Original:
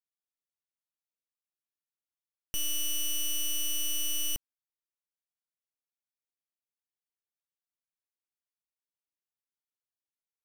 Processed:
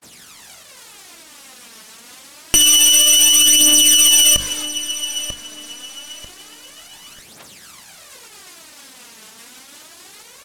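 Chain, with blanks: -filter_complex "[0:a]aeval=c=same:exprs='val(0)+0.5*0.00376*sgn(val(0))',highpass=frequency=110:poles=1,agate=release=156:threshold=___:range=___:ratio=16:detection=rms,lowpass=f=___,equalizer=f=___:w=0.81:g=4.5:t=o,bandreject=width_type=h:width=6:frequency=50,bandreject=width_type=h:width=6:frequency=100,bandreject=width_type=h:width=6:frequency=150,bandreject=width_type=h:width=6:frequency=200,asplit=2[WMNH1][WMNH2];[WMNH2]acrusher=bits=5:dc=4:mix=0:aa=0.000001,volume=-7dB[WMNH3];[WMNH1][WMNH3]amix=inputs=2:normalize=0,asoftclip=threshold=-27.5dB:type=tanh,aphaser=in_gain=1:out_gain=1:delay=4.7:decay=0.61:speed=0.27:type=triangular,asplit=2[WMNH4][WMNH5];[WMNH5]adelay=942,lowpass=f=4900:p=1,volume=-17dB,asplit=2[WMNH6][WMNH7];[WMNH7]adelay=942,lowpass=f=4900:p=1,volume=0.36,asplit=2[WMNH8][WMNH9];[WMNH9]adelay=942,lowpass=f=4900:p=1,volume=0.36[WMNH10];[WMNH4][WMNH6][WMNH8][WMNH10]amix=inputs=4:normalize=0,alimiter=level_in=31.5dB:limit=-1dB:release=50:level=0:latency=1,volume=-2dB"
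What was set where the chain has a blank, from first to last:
-56dB, -51dB, 10000, 200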